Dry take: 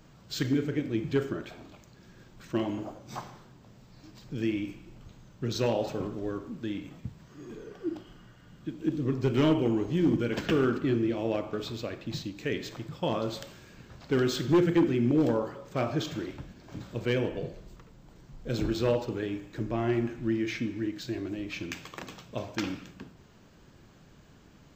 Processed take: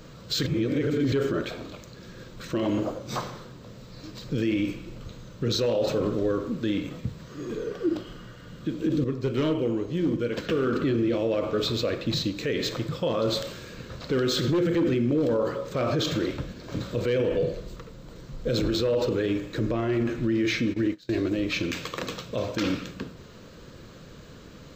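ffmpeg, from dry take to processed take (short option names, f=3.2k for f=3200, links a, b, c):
-filter_complex "[0:a]asplit=3[a][b][c];[a]afade=t=out:st=20.72:d=0.02[d];[b]agate=range=-25dB:threshold=-38dB:ratio=16:release=100:detection=peak,afade=t=in:st=20.72:d=0.02,afade=t=out:st=21.31:d=0.02[e];[c]afade=t=in:st=21.31:d=0.02[f];[d][e][f]amix=inputs=3:normalize=0,asplit=5[g][h][i][j][k];[g]atrim=end=0.462[l];[h]atrim=start=0.458:end=1.122,asetpts=PTS-STARTPTS,areverse[m];[i]atrim=start=1.118:end=9.042[n];[j]atrim=start=9.038:end=10.672,asetpts=PTS-STARTPTS,volume=-10dB[o];[k]atrim=start=10.668[p];[l][m]acrossfade=d=0.004:c1=hsin:c2=hsin[q];[q][n]acrossfade=d=0.004:c1=hsin:c2=hsin[r];[r][o]acrossfade=d=0.004:c1=hsin:c2=hsin[s];[s][p]acrossfade=d=0.004:c1=hsin:c2=hsin,equalizer=f=500:t=o:w=0.33:g=9,equalizer=f=800:t=o:w=0.33:g=-7,equalizer=f=1.25k:t=o:w=0.33:g=3,equalizer=f=4k:t=o:w=0.33:g=6,alimiter=level_in=2.5dB:limit=-24dB:level=0:latency=1:release=30,volume=-2.5dB,volume=9dB"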